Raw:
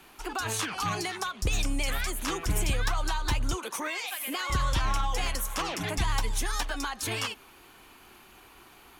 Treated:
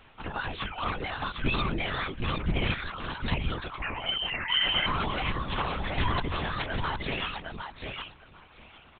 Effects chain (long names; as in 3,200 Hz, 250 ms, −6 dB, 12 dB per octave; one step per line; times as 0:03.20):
0:02.73–0:03.32: high-pass filter 1,400 Hz 12 dB per octave
reverb reduction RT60 0.91 s
repeating echo 757 ms, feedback 16%, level −4.5 dB
0:03.82–0:04.86: voice inversion scrambler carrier 3,100 Hz
linear-prediction vocoder at 8 kHz whisper